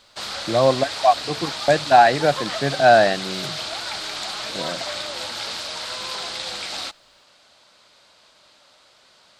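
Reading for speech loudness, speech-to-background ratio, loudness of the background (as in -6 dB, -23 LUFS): -18.0 LUFS, 10.0 dB, -28.0 LUFS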